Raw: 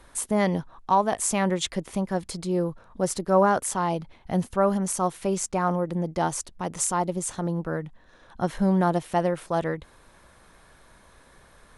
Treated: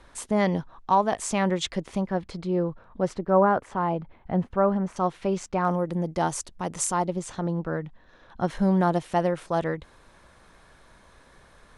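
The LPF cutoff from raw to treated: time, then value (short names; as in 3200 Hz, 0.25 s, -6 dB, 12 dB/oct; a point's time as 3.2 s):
6300 Hz
from 2.07 s 3100 Hz
from 3.15 s 1900 Hz
from 4.96 s 4000 Hz
from 5.65 s 9900 Hz
from 7.03 s 5100 Hz
from 8.5 s 8200 Hz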